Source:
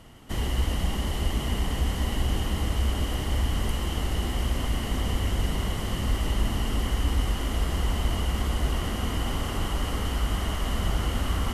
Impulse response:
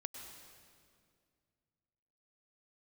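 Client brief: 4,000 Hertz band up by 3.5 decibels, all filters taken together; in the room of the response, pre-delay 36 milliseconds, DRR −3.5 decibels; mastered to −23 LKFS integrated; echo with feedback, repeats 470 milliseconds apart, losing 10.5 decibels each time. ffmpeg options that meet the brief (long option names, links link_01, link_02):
-filter_complex "[0:a]equalizer=frequency=4000:width_type=o:gain=5.5,aecho=1:1:470|940|1410:0.299|0.0896|0.0269,asplit=2[link_01][link_02];[1:a]atrim=start_sample=2205,adelay=36[link_03];[link_02][link_03]afir=irnorm=-1:irlink=0,volume=6dB[link_04];[link_01][link_04]amix=inputs=2:normalize=0,volume=-1.5dB"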